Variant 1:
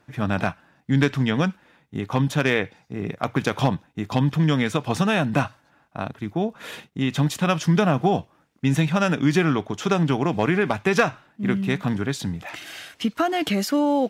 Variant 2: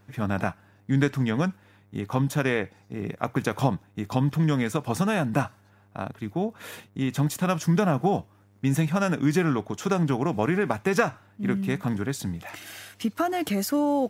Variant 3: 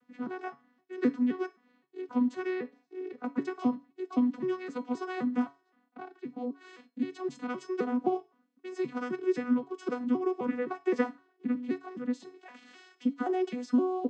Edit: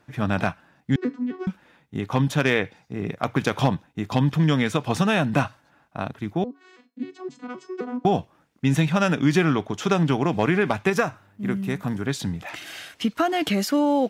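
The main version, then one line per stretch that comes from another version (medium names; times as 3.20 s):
1
0.96–1.47 s: from 3
6.44–8.05 s: from 3
10.90–12.06 s: from 2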